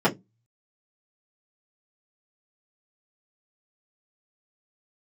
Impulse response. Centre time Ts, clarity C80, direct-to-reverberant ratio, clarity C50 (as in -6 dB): 15 ms, 28.5 dB, -9.5 dB, 19.5 dB